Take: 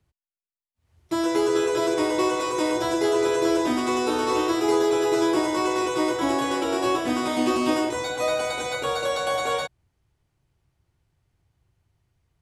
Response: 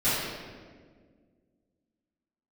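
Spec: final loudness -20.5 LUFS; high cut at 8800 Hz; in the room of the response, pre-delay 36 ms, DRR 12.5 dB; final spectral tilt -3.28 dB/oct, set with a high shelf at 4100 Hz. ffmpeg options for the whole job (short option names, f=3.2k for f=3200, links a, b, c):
-filter_complex "[0:a]lowpass=8.8k,highshelf=f=4.1k:g=4,asplit=2[a][b];[1:a]atrim=start_sample=2205,adelay=36[c];[b][c]afir=irnorm=-1:irlink=0,volume=-26.5dB[d];[a][d]amix=inputs=2:normalize=0,volume=2.5dB"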